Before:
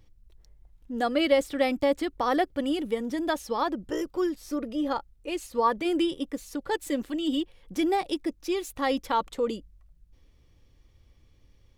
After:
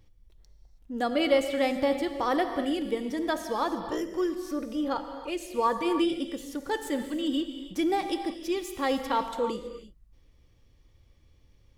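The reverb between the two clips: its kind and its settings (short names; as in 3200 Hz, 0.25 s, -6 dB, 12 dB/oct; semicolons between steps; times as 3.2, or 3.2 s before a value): non-linear reverb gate 0.35 s flat, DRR 7 dB; gain -1.5 dB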